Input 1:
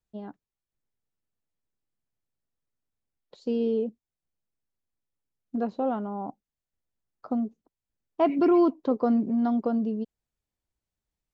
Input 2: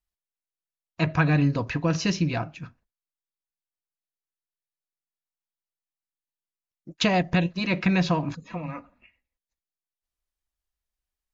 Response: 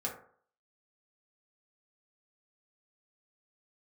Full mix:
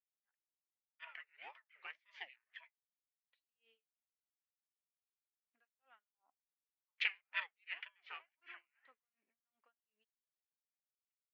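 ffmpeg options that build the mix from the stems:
-filter_complex "[0:a]volume=-10.5dB[a];[1:a]agate=range=-6dB:threshold=-49dB:ratio=16:detection=peak,aeval=exprs='val(0)*sin(2*PI*510*n/s+510*0.6/1.9*sin(2*PI*1.9*n/s))':c=same,volume=0dB,asplit=2[b][c];[c]volume=-21.5dB[d];[2:a]atrim=start_sample=2205[e];[d][e]afir=irnorm=-1:irlink=0[f];[a][b][f]amix=inputs=3:normalize=0,asuperpass=centerf=2200:order=4:qfactor=2.1,aeval=exprs='val(0)*pow(10,-40*(0.5-0.5*cos(2*PI*2.7*n/s))/20)':c=same"

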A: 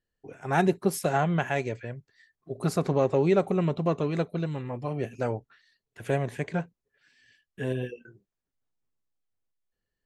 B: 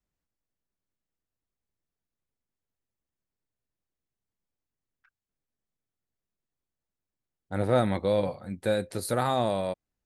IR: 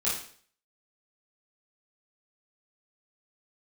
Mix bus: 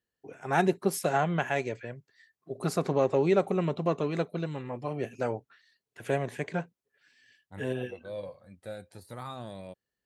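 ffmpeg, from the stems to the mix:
-filter_complex "[0:a]lowshelf=f=110:g=-11.5,volume=-0.5dB,asplit=2[a][b];[1:a]aphaser=in_gain=1:out_gain=1:delay=1.9:decay=0.5:speed=0.3:type=triangular,deesser=0.75,volume=-14dB[c];[b]apad=whole_len=443545[d];[c][d]sidechaincompress=threshold=-43dB:ratio=8:attack=8.4:release=334[e];[a][e]amix=inputs=2:normalize=0,highpass=56"

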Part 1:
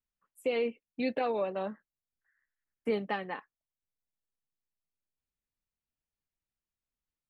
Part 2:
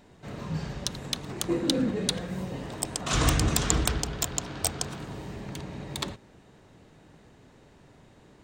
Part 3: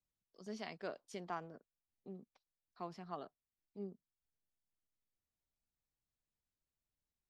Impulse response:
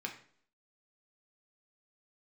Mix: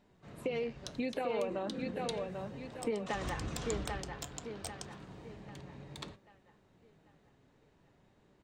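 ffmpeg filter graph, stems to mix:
-filter_complex "[0:a]volume=2.5dB,asplit=2[a][b];[b]volume=-11dB[c];[1:a]flanger=delay=4.8:depth=2.7:regen=83:speed=0.61:shape=triangular,volume=-7.5dB[d];[2:a]volume=-10.5dB[e];[a][d]amix=inputs=2:normalize=0,highshelf=f=9.1k:g=-11,acompressor=threshold=-33dB:ratio=6,volume=0dB[f];[c]aecho=0:1:791|1582|2373|3164|3955|4746:1|0.43|0.185|0.0795|0.0342|0.0147[g];[e][f][g]amix=inputs=3:normalize=0"

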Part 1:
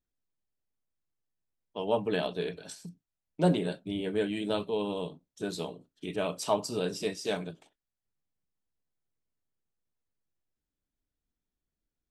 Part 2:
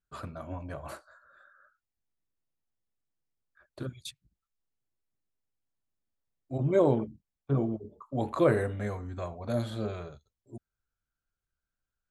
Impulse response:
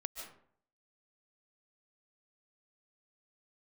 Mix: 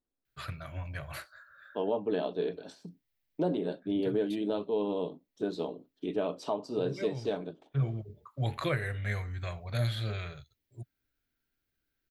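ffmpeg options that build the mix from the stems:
-filter_complex "[0:a]firequalizer=gain_entry='entry(150,0);entry(260,10);entry(2200,-3);entry(3700,1);entry(8200,-13)':delay=0.05:min_phase=1,volume=-5dB,asplit=2[a][b];[1:a]equalizer=f=125:t=o:w=1:g=9,equalizer=f=250:t=o:w=1:g=-12,equalizer=f=500:t=o:w=1:g=-3,equalizer=f=1k:t=o:w=1:g=-6,equalizer=f=2k:t=o:w=1:g=11,equalizer=f=4k:t=o:w=1:g=5,equalizer=f=8k:t=o:w=1:g=-10,crystalizer=i=2:c=0,adelay=250,volume=-1dB[c];[b]apad=whole_len=544808[d];[c][d]sidechaincompress=threshold=-35dB:ratio=8:attack=20:release=798[e];[a][e]amix=inputs=2:normalize=0,alimiter=limit=-20dB:level=0:latency=1:release=389"

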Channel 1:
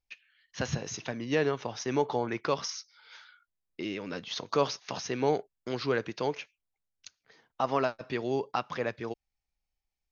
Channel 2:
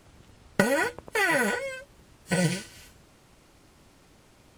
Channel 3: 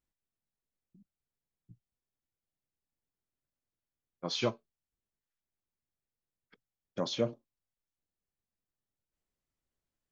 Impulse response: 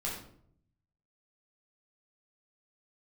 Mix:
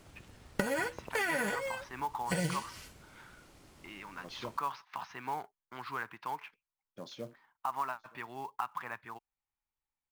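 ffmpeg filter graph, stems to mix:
-filter_complex "[0:a]lowpass=2.2k,lowshelf=f=700:t=q:w=3:g=-10.5,adelay=50,volume=-4dB[a];[1:a]volume=-1.5dB[b];[2:a]volume=-12.5dB,asplit=2[c][d];[d]volume=-24dB,aecho=0:1:924:1[e];[a][b][c][e]amix=inputs=4:normalize=0,acrusher=bits=5:mode=log:mix=0:aa=0.000001,acompressor=threshold=-32dB:ratio=2.5"

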